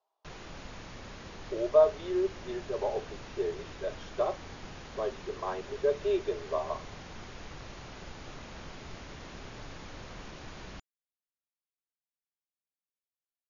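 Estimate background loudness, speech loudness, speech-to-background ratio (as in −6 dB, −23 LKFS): −46.0 LKFS, −32.0 LKFS, 14.0 dB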